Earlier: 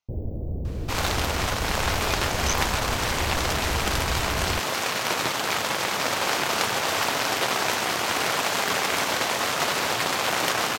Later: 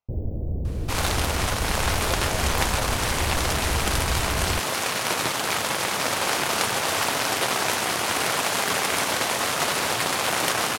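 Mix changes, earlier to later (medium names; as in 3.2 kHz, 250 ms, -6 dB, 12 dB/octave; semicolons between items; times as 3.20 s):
speech: add tilt EQ -4.5 dB/octave; second sound: add peaking EQ 10 kHz +8 dB 0.51 oct; master: add bass shelf 160 Hz +3 dB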